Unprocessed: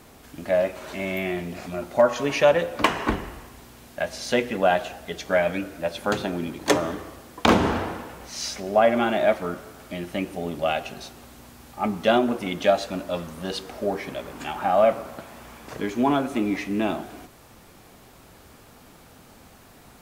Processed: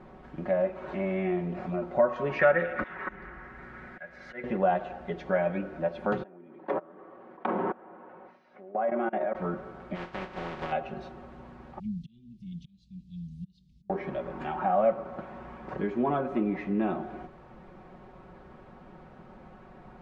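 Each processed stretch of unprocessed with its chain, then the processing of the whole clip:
2.39–4.44 s: high-order bell 1.7 kHz +13.5 dB 1 oct + slow attack 666 ms + repeats whose band climbs or falls 216 ms, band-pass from 2.8 kHz, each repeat 0.7 oct, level -10 dB
6.23–9.35 s: level held to a coarse grid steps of 24 dB + band-pass 270–2200 Hz
9.94–10.71 s: spectral contrast reduction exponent 0.2 + low-pass 5.2 kHz + compression 4:1, threshold -28 dBFS
11.79–13.90 s: slow attack 773 ms + inverse Chebyshev band-stop 440–1600 Hz, stop band 60 dB
whole clip: low-pass 1.4 kHz 12 dB/octave; comb 5.4 ms; compression 1.5:1, threshold -32 dBFS

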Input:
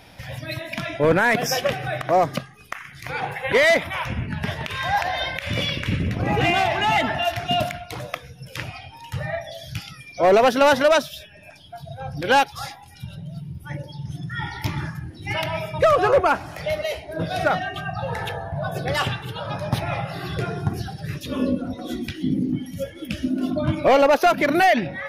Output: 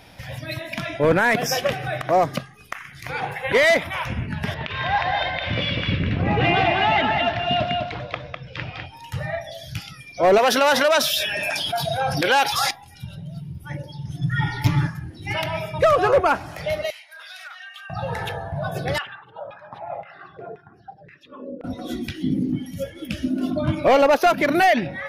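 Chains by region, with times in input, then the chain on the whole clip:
4.54–8.86 s: low-pass 4.2 kHz 24 dB/octave + delay 202 ms -4.5 dB
10.38–12.71 s: high-pass 680 Hz 6 dB/octave + level flattener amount 70%
14.21–14.87 s: bass shelf 190 Hz +7 dB + comb 7 ms, depth 87%
16.90–17.90 s: high-pass 1.3 kHz 24 dB/octave + compression, threshold -36 dBFS
18.98–21.64 s: resonances exaggerated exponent 1.5 + LFO band-pass saw down 1.9 Hz 500–2200 Hz
whole clip: none

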